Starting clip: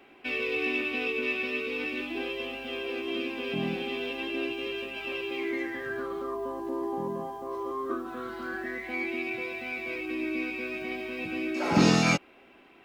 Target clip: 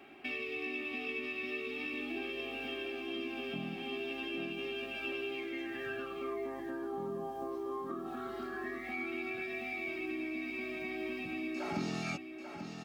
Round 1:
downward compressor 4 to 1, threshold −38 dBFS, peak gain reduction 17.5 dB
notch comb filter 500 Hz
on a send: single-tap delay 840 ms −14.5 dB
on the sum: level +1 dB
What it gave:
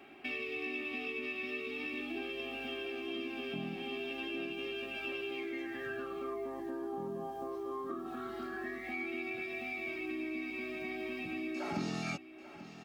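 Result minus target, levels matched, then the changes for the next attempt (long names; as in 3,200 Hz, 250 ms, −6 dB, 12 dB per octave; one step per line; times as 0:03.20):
echo-to-direct −6.5 dB
change: single-tap delay 840 ms −8 dB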